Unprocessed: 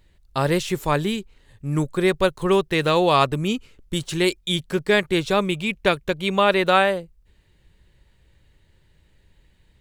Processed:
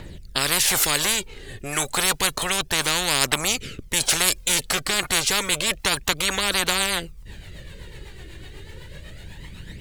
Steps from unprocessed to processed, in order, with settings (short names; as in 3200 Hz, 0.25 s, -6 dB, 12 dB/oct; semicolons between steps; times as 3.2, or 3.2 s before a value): phaser 0.3 Hz, delay 2.9 ms, feedback 52%; rotary speaker horn 0.85 Hz, later 8 Hz, at 4.8; spectral compressor 10:1